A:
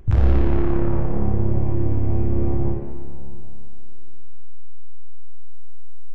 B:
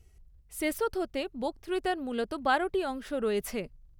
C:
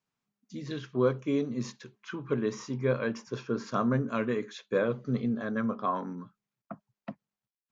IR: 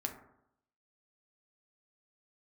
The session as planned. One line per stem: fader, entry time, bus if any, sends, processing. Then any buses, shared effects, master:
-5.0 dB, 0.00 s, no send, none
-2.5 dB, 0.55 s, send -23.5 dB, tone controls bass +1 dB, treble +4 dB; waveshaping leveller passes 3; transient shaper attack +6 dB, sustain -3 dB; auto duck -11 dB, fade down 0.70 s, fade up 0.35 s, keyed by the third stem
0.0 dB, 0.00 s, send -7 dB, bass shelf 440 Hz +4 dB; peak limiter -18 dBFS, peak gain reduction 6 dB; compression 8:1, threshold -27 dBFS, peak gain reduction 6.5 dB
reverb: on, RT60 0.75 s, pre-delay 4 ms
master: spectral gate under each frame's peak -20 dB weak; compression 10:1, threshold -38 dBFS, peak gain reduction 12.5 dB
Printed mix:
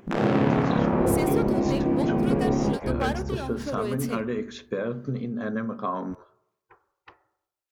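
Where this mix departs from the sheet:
stem A -5.0 dB -> +6.5 dB; master: missing compression 10:1, threshold -38 dBFS, peak gain reduction 12.5 dB

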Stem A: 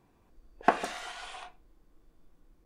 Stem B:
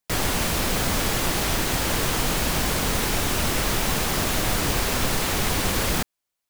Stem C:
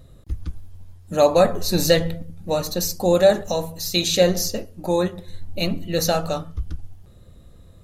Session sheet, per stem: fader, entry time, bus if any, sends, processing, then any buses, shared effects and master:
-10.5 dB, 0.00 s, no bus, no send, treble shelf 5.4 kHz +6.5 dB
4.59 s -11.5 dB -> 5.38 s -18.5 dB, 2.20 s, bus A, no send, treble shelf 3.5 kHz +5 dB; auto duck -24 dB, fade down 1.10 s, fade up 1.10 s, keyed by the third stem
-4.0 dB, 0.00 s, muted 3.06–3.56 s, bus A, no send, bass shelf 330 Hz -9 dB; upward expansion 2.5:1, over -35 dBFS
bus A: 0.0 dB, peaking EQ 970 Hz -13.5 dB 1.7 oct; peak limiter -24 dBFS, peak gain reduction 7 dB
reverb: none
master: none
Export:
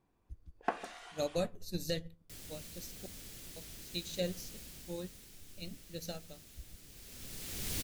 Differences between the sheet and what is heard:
stem A: missing treble shelf 5.4 kHz +6.5 dB; stem B -11.5 dB -> -2.5 dB; stem C: missing bass shelf 330 Hz -9 dB

